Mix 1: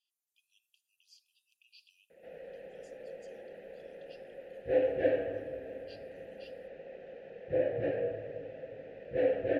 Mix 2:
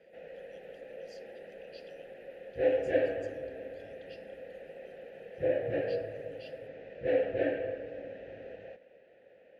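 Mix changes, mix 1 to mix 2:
background: entry -2.10 s; master: add peaking EQ 2.5 kHz +3 dB 2.6 oct

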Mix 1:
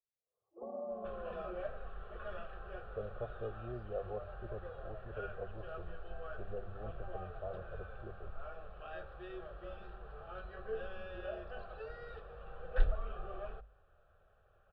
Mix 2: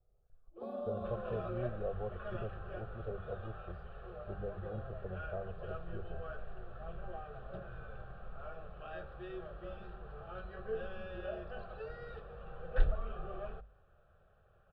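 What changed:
speech: entry -2.10 s; first sound: remove steep low-pass 1.1 kHz 48 dB/octave; master: add peaking EQ 160 Hz +7.5 dB 1.7 oct

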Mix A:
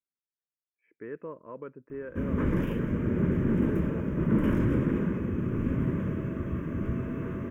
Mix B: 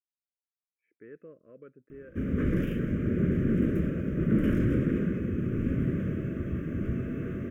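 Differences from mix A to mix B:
speech -8.0 dB; master: add Butterworth band-stop 890 Hz, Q 1.3

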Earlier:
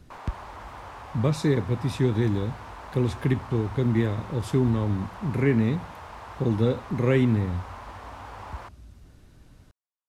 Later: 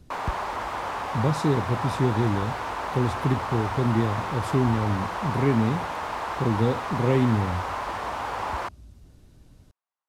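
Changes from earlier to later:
speech: add peaking EQ 1.6 kHz -6 dB 1.7 oct; background +11.5 dB

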